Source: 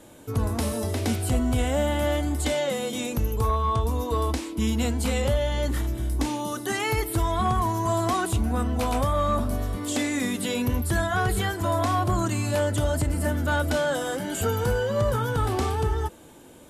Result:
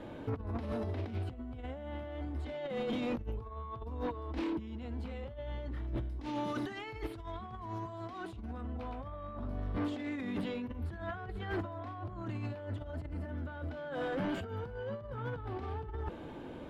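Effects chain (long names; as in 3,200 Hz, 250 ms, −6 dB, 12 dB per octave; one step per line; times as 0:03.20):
0:06.09–0:08.61: parametric band 6,800 Hz +8.5 dB 2.3 octaves
compressor whose output falls as the input rises −31 dBFS, ratio −0.5
soft clipping −27 dBFS, distortion −10 dB
high-frequency loss of the air 340 metres
level −2.5 dB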